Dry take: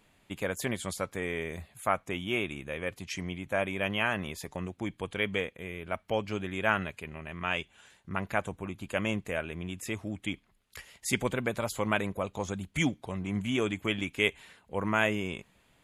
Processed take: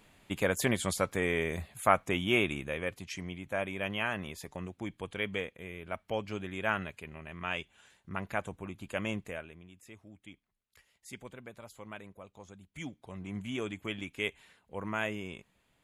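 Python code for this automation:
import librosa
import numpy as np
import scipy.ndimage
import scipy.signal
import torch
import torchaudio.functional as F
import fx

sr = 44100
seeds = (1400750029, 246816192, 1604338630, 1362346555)

y = fx.gain(x, sr, db=fx.line((2.52, 3.5), (3.14, -4.0), (9.23, -4.0), (9.68, -17.0), (12.66, -17.0), (13.22, -7.0)))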